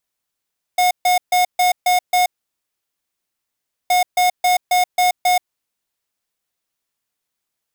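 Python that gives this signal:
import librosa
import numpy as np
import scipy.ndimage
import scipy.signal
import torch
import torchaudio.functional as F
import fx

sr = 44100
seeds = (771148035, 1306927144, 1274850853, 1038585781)

y = fx.beep_pattern(sr, wave='square', hz=724.0, on_s=0.13, off_s=0.14, beeps=6, pause_s=1.64, groups=2, level_db=-14.5)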